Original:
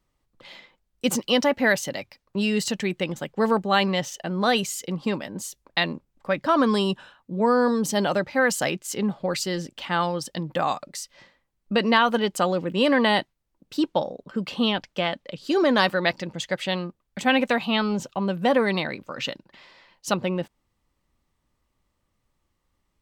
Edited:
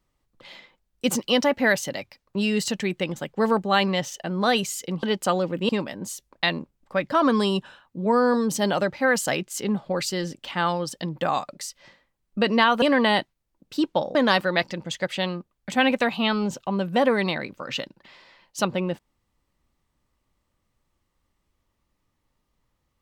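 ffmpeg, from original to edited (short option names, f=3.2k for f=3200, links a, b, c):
-filter_complex "[0:a]asplit=5[a][b][c][d][e];[a]atrim=end=5.032[f];[b]atrim=start=12.158:end=12.822[g];[c]atrim=start=5.028:end=12.162[h];[d]atrim=start=12.818:end=14.152[i];[e]atrim=start=15.638[j];[f][g]acrossfade=d=0.004:c1=hsin:c2=hsin[k];[k][h]acrossfade=d=0.004:c1=hsin:c2=hsin[l];[l][i]acrossfade=d=0.004:c1=hsin:c2=hsin[m];[m][j]acrossfade=d=0.004:c1=hsin:c2=hsin"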